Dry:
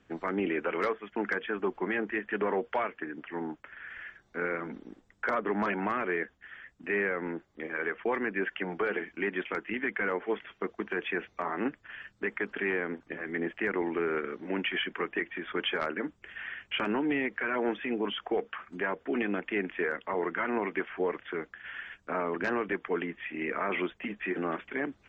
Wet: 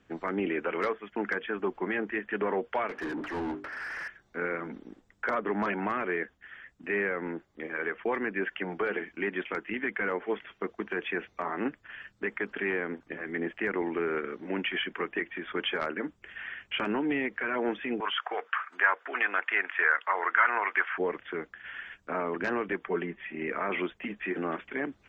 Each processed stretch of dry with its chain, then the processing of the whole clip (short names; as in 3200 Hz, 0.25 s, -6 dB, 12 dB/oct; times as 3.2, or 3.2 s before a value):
2.89–4.08 high shelf 2100 Hz -8.5 dB + notches 50/100/150/200/250/300/350/400 Hz + overdrive pedal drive 29 dB, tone 1300 Hz, clips at -26 dBFS
18–20.98 HPF 730 Hz + bell 1400 Hz +11.5 dB 1.6 oct
22.85–23.47 high shelf 2600 Hz -7.5 dB + comb 5.2 ms, depth 56%
whole clip: dry